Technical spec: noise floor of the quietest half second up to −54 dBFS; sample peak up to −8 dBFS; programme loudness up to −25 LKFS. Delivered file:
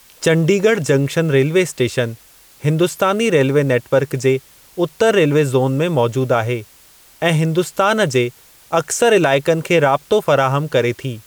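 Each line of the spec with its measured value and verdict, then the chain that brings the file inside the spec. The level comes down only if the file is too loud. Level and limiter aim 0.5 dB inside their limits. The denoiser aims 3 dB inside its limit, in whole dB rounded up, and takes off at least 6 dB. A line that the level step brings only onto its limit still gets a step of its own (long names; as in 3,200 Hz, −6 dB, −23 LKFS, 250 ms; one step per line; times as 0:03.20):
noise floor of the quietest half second −47 dBFS: out of spec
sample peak −4.0 dBFS: out of spec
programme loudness −16.5 LKFS: out of spec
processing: level −9 dB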